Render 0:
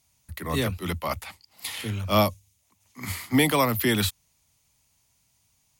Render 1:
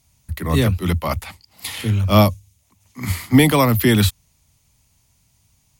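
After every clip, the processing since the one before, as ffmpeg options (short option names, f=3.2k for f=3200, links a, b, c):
-af "lowshelf=f=240:g=9.5,volume=4.5dB"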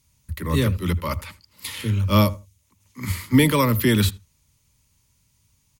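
-filter_complex "[0:a]asuperstop=centerf=730:order=8:qfactor=3.2,asplit=2[a][b];[b]adelay=80,lowpass=f=1.6k:p=1,volume=-18dB,asplit=2[c][d];[d]adelay=80,lowpass=f=1.6k:p=1,volume=0.18[e];[a][c][e]amix=inputs=3:normalize=0,volume=-3.5dB"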